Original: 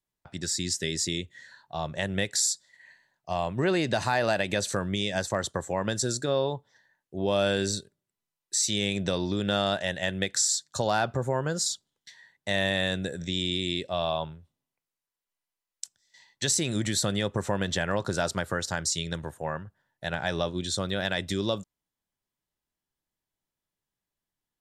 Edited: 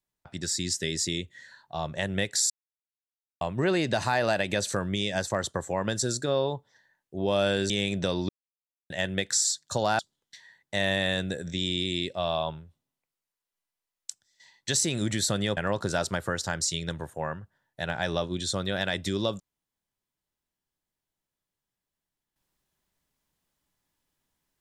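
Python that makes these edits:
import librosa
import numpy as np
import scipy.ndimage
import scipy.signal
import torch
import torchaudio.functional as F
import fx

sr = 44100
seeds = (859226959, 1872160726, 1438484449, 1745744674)

y = fx.edit(x, sr, fx.silence(start_s=2.5, length_s=0.91),
    fx.cut(start_s=7.7, length_s=1.04),
    fx.silence(start_s=9.33, length_s=0.61),
    fx.cut(start_s=11.03, length_s=0.7),
    fx.cut(start_s=17.31, length_s=0.5), tone=tone)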